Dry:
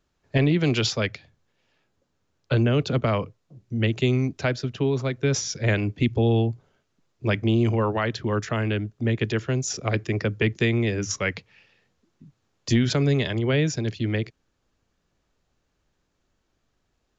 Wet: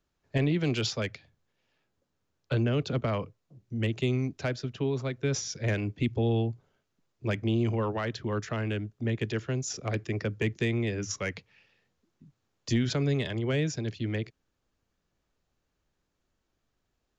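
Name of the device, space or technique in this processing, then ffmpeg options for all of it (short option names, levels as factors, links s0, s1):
one-band saturation: -filter_complex "[0:a]acrossover=split=570|3900[s0][s1][s2];[s1]asoftclip=type=tanh:threshold=0.119[s3];[s0][s3][s2]amix=inputs=3:normalize=0,volume=0.501"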